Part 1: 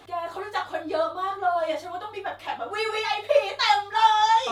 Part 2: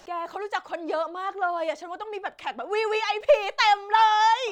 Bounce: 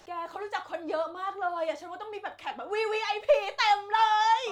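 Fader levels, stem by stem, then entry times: -12.0 dB, -5.0 dB; 0.00 s, 0.00 s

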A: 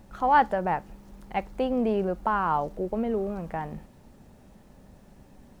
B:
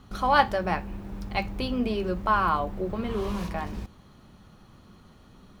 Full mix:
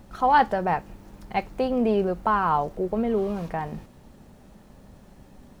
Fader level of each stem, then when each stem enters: +2.5 dB, -9.0 dB; 0.00 s, 0.00 s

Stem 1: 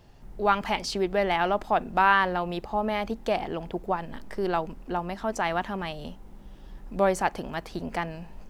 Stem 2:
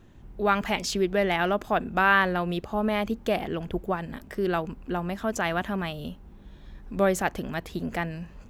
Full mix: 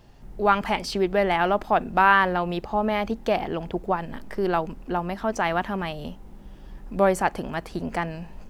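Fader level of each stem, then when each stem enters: +1.5 dB, -10.5 dB; 0.00 s, 0.00 s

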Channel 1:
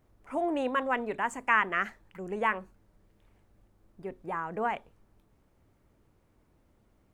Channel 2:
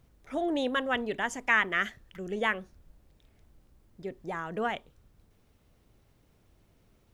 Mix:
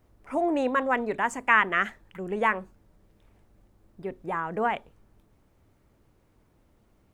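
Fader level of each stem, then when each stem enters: +2.5 dB, -9.5 dB; 0.00 s, 0.00 s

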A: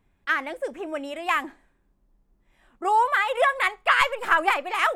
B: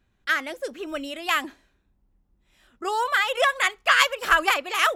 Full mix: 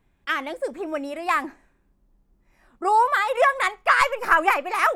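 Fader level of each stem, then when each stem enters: +1.0 dB, -8.5 dB; 0.00 s, 0.00 s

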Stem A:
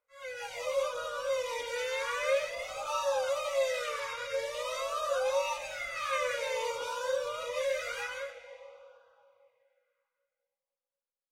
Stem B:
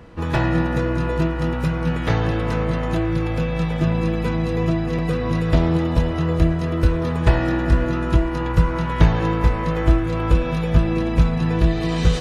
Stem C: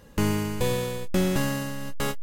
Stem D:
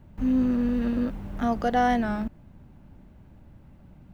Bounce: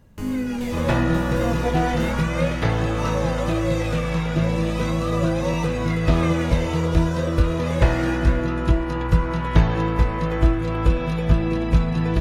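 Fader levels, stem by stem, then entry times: +2.0 dB, -1.5 dB, -10.5 dB, -3.0 dB; 0.10 s, 0.55 s, 0.00 s, 0.00 s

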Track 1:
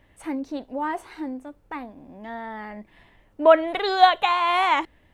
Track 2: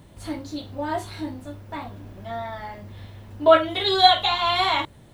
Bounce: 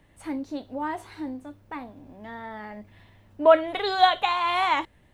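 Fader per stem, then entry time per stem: -3.0 dB, -14.0 dB; 0.00 s, 0.00 s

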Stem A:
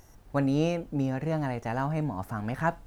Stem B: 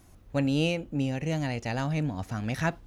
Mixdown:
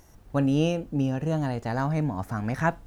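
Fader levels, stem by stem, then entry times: 0.0 dB, -6.5 dB; 0.00 s, 0.00 s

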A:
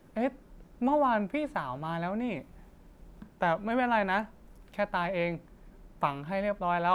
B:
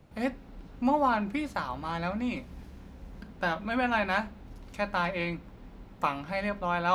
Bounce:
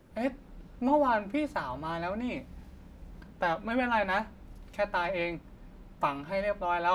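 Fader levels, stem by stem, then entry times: -2.5 dB, -5.0 dB; 0.00 s, 0.00 s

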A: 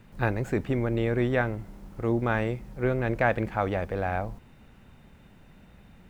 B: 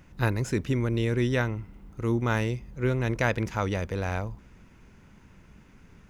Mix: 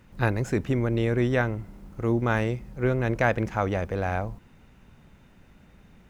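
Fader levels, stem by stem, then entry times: -2.5 dB, -6.0 dB; 0.00 s, 0.00 s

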